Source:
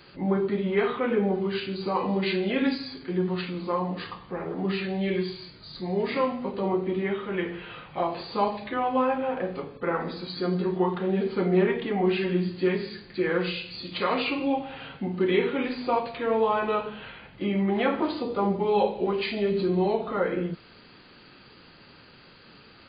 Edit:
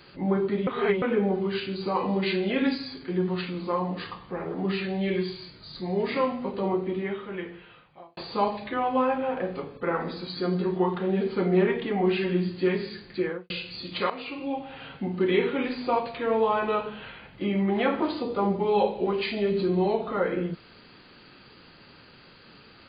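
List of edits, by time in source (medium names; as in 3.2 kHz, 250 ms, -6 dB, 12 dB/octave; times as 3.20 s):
0.67–1.02 s: reverse
6.65–8.17 s: fade out
13.15–13.50 s: studio fade out
14.10–15.02 s: fade in, from -13.5 dB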